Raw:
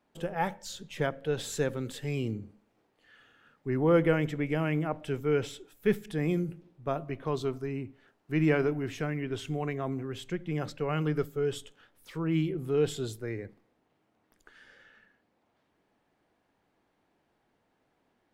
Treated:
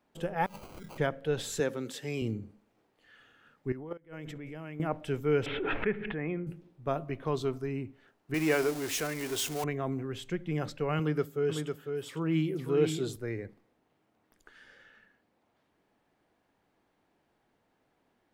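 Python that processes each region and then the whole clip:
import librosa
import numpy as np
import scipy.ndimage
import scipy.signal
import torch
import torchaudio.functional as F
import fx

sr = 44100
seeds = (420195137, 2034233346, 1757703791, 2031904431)

y = fx.chain(x, sr, fx.hum_notches(base_hz=50, count=4),
    fx.over_compress(threshold_db=-48.0, ratio=-1.0),
    fx.sample_hold(seeds[0], rate_hz=1800.0, jitter_pct=0), at=(0.46, 0.98))
y = fx.chain(y, sr, fx.highpass(hz=190.0, slope=12),
    fx.peak_eq(hz=5700.0, db=5.0, octaves=0.35), at=(1.6, 2.22))
y = fx.chain(y, sr, fx.peak_eq(hz=120.0, db=-3.5, octaves=0.38),
    fx.level_steps(step_db=21),
    fx.gate_flip(shuts_db=-26.0, range_db=-24), at=(3.72, 4.8))
y = fx.chain(y, sr, fx.steep_lowpass(hz=2500.0, slope=36),
    fx.low_shelf(hz=440.0, db=-9.0),
    fx.pre_swell(db_per_s=26.0), at=(5.46, 6.47))
y = fx.chain(y, sr, fx.zero_step(step_db=-37.0),
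    fx.bass_treble(bass_db=-12, treble_db=11), at=(8.34, 9.64))
y = fx.chain(y, sr, fx.highpass(hz=120.0, slope=12),
    fx.echo_single(ms=502, db=-5.5), at=(10.99, 13.16))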